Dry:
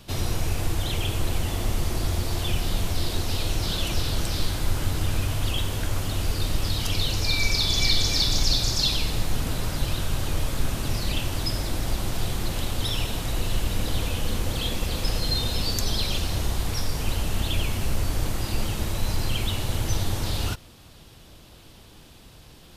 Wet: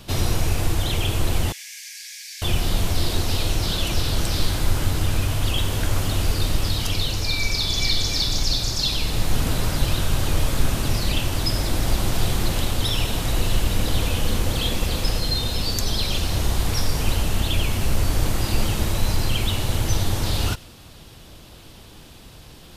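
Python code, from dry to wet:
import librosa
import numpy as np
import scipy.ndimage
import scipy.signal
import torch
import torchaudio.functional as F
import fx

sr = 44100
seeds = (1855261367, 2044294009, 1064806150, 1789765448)

y = fx.rider(x, sr, range_db=3, speed_s=0.5)
y = fx.cheby_ripple_highpass(y, sr, hz=1600.0, ripple_db=9, at=(1.52, 2.42))
y = fx.echo_wet_highpass(y, sr, ms=95, feedback_pct=54, hz=2100.0, wet_db=-22)
y = y * librosa.db_to_amplitude(3.0)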